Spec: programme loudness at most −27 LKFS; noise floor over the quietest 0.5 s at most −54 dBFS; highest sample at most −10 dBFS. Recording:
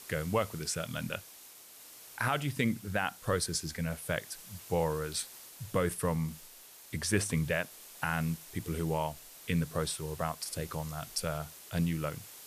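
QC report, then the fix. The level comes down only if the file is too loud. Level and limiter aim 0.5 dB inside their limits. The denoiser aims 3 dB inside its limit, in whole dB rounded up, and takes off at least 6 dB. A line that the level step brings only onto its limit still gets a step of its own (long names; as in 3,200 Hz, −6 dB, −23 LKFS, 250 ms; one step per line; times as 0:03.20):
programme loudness −34.0 LKFS: in spec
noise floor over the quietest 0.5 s −53 dBFS: out of spec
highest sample −17.0 dBFS: in spec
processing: broadband denoise 6 dB, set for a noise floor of −53 dBFS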